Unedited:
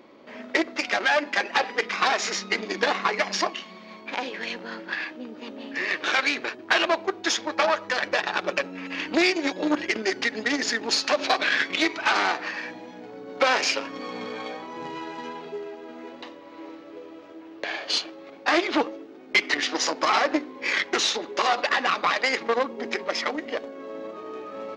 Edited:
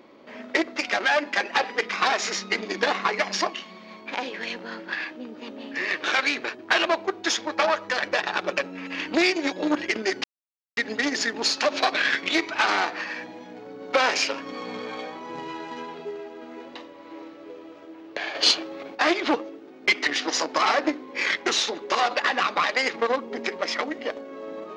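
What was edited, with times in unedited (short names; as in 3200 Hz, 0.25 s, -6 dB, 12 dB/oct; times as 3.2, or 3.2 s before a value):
10.24 insert silence 0.53 s
17.82–18.42 gain +6.5 dB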